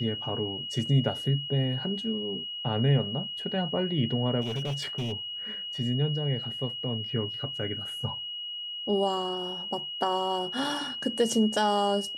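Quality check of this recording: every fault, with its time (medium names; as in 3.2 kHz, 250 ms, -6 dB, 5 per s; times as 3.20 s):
whine 2.9 kHz -34 dBFS
4.41–5.13 s: clipped -27.5 dBFS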